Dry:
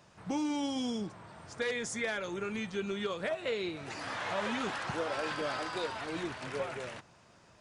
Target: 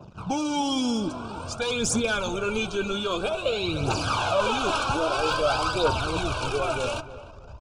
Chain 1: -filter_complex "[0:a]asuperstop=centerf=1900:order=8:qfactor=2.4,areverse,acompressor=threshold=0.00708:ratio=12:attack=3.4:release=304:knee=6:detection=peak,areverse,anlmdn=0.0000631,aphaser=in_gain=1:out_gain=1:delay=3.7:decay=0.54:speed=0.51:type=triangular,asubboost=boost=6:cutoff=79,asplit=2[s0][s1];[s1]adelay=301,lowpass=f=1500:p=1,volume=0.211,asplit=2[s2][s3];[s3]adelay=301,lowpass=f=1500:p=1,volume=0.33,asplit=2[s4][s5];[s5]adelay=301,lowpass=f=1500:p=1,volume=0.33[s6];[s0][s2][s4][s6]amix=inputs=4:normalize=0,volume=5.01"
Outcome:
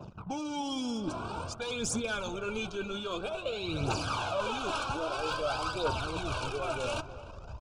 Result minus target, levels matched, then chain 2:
compression: peak gain reduction +9 dB
-filter_complex "[0:a]asuperstop=centerf=1900:order=8:qfactor=2.4,areverse,acompressor=threshold=0.0224:ratio=12:attack=3.4:release=304:knee=6:detection=peak,areverse,anlmdn=0.0000631,aphaser=in_gain=1:out_gain=1:delay=3.7:decay=0.54:speed=0.51:type=triangular,asubboost=boost=6:cutoff=79,asplit=2[s0][s1];[s1]adelay=301,lowpass=f=1500:p=1,volume=0.211,asplit=2[s2][s3];[s3]adelay=301,lowpass=f=1500:p=1,volume=0.33,asplit=2[s4][s5];[s5]adelay=301,lowpass=f=1500:p=1,volume=0.33[s6];[s0][s2][s4][s6]amix=inputs=4:normalize=0,volume=5.01"

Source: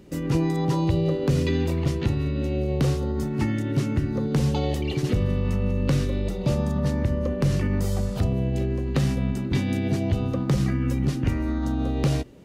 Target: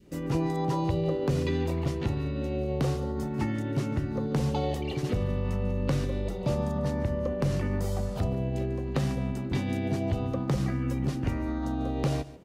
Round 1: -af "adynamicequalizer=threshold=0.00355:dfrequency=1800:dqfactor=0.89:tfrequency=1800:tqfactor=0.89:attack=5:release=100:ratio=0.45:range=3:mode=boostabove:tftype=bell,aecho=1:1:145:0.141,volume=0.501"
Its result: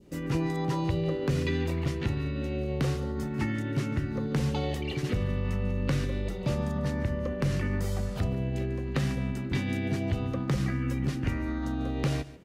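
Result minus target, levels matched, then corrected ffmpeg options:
2 kHz band +4.5 dB
-af "adynamicequalizer=threshold=0.00355:dfrequency=780:dqfactor=0.89:tfrequency=780:tqfactor=0.89:attack=5:release=100:ratio=0.45:range=3:mode=boostabove:tftype=bell,aecho=1:1:145:0.141,volume=0.501"

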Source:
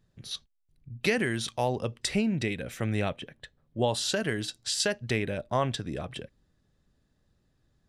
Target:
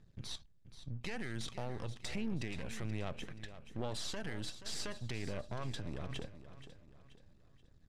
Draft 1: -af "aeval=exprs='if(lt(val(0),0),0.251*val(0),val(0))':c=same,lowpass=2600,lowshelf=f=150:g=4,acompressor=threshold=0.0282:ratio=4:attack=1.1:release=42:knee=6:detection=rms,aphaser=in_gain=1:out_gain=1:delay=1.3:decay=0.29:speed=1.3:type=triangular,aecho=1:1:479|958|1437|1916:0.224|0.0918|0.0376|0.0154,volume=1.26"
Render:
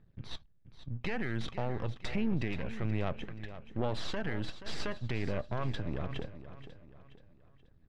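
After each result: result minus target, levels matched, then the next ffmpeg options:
8 kHz band -13.5 dB; compression: peak gain reduction -7 dB
-af "aeval=exprs='if(lt(val(0),0),0.251*val(0),val(0))':c=same,lowpass=8500,lowshelf=f=150:g=4,acompressor=threshold=0.0282:ratio=4:attack=1.1:release=42:knee=6:detection=rms,aphaser=in_gain=1:out_gain=1:delay=1.3:decay=0.29:speed=1.3:type=triangular,aecho=1:1:479|958|1437|1916:0.224|0.0918|0.0376|0.0154,volume=1.26"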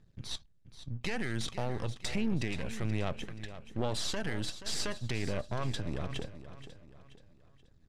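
compression: peak gain reduction -7 dB
-af "aeval=exprs='if(lt(val(0),0),0.251*val(0),val(0))':c=same,lowpass=8500,lowshelf=f=150:g=4,acompressor=threshold=0.01:ratio=4:attack=1.1:release=42:knee=6:detection=rms,aphaser=in_gain=1:out_gain=1:delay=1.3:decay=0.29:speed=1.3:type=triangular,aecho=1:1:479|958|1437|1916:0.224|0.0918|0.0376|0.0154,volume=1.26"

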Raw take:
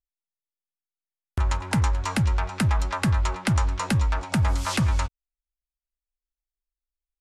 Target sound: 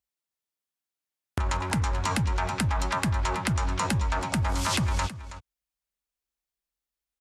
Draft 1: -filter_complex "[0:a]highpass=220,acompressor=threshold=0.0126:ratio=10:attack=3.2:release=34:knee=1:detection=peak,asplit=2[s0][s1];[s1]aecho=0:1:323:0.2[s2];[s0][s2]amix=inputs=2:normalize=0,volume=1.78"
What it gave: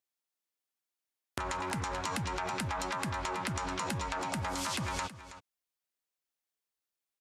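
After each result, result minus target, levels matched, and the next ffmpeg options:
compression: peak gain reduction +8 dB; 125 Hz band -5.0 dB
-filter_complex "[0:a]highpass=220,acompressor=threshold=0.0376:ratio=10:attack=3.2:release=34:knee=1:detection=peak,asplit=2[s0][s1];[s1]aecho=0:1:323:0.2[s2];[s0][s2]amix=inputs=2:normalize=0,volume=1.78"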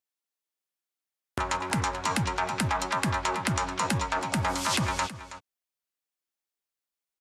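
125 Hz band -4.5 dB
-filter_complex "[0:a]highpass=76,acompressor=threshold=0.0376:ratio=10:attack=3.2:release=34:knee=1:detection=peak,asplit=2[s0][s1];[s1]aecho=0:1:323:0.2[s2];[s0][s2]amix=inputs=2:normalize=0,volume=1.78"

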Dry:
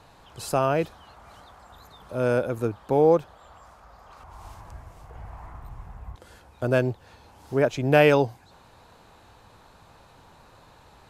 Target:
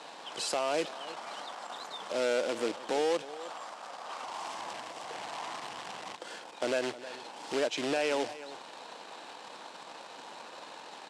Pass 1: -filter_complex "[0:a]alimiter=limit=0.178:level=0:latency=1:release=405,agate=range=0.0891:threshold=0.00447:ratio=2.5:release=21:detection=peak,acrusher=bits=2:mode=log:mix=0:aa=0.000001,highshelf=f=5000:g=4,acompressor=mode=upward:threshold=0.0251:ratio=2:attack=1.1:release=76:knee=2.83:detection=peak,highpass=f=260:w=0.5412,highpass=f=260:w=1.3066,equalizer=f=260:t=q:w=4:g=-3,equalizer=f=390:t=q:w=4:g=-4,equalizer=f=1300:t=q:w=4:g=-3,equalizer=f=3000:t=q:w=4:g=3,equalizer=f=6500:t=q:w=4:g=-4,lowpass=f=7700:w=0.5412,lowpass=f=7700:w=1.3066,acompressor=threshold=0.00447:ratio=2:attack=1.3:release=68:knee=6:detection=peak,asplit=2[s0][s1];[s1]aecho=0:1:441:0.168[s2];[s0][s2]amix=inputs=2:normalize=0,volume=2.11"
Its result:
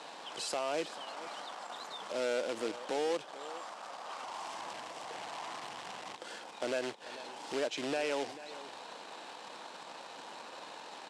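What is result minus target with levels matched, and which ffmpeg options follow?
echo 129 ms late; compression: peak gain reduction +4 dB
-filter_complex "[0:a]alimiter=limit=0.178:level=0:latency=1:release=405,agate=range=0.0891:threshold=0.00447:ratio=2.5:release=21:detection=peak,acrusher=bits=2:mode=log:mix=0:aa=0.000001,highshelf=f=5000:g=4,acompressor=mode=upward:threshold=0.0251:ratio=2:attack=1.1:release=76:knee=2.83:detection=peak,highpass=f=260:w=0.5412,highpass=f=260:w=1.3066,equalizer=f=260:t=q:w=4:g=-3,equalizer=f=390:t=q:w=4:g=-4,equalizer=f=1300:t=q:w=4:g=-3,equalizer=f=3000:t=q:w=4:g=3,equalizer=f=6500:t=q:w=4:g=-4,lowpass=f=7700:w=0.5412,lowpass=f=7700:w=1.3066,acompressor=threshold=0.0112:ratio=2:attack=1.3:release=68:knee=6:detection=peak,asplit=2[s0][s1];[s1]aecho=0:1:312:0.168[s2];[s0][s2]amix=inputs=2:normalize=0,volume=2.11"

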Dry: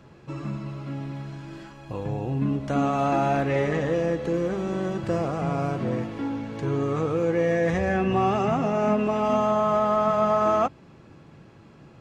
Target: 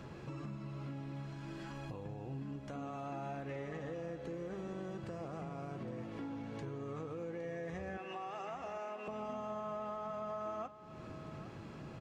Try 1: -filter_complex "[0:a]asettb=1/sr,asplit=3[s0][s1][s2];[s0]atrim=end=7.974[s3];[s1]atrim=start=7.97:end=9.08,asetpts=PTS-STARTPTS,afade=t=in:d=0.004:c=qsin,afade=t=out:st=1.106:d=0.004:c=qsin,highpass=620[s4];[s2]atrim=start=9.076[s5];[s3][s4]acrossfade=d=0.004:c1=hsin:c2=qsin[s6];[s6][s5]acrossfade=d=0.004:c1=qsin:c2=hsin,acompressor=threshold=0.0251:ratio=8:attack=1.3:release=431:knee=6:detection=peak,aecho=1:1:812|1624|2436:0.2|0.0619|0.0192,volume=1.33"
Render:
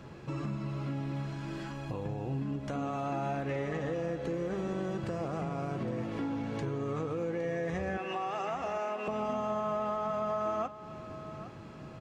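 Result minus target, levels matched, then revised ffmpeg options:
compression: peak gain reduction -8.5 dB
-filter_complex "[0:a]asettb=1/sr,asplit=3[s0][s1][s2];[s0]atrim=end=7.974[s3];[s1]atrim=start=7.97:end=9.08,asetpts=PTS-STARTPTS,afade=t=in:d=0.004:c=qsin,afade=t=out:st=1.106:d=0.004:c=qsin,highpass=620[s4];[s2]atrim=start=9.076[s5];[s3][s4]acrossfade=d=0.004:c1=hsin:c2=qsin[s6];[s6][s5]acrossfade=d=0.004:c1=qsin:c2=hsin,acompressor=threshold=0.00794:ratio=8:attack=1.3:release=431:knee=6:detection=peak,aecho=1:1:812|1624|2436:0.2|0.0619|0.0192,volume=1.33"

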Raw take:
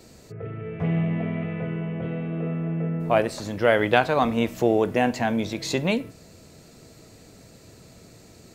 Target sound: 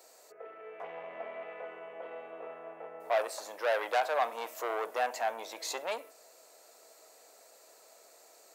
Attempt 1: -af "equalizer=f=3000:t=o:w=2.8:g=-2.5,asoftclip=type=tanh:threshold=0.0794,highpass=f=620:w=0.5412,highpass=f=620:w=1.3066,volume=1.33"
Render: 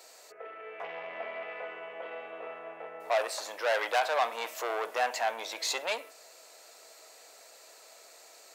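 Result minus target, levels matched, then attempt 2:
4 kHz band +4.5 dB
-af "equalizer=f=3000:t=o:w=2.8:g=-11.5,asoftclip=type=tanh:threshold=0.0794,highpass=f=620:w=0.5412,highpass=f=620:w=1.3066,volume=1.33"

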